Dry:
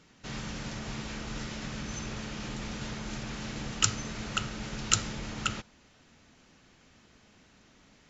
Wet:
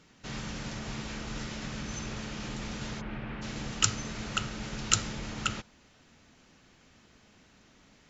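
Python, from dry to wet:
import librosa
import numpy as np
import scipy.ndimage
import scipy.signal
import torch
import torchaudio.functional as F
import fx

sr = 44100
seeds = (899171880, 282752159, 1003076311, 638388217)

y = fx.lowpass(x, sr, hz=2700.0, slope=24, at=(3.0, 3.41), fade=0.02)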